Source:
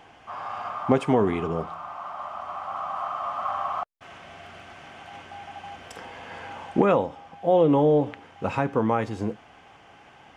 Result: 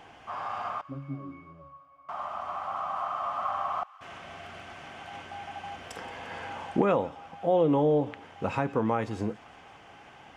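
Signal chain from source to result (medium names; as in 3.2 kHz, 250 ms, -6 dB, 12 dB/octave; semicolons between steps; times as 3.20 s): 0.81–2.09 s: pitch-class resonator C#, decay 0.57 s; in parallel at 0 dB: compression, threshold -31 dBFS, peak gain reduction 15.5 dB; on the sum: feedback echo behind a high-pass 174 ms, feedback 72%, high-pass 1.4 kHz, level -19 dB; trim -6 dB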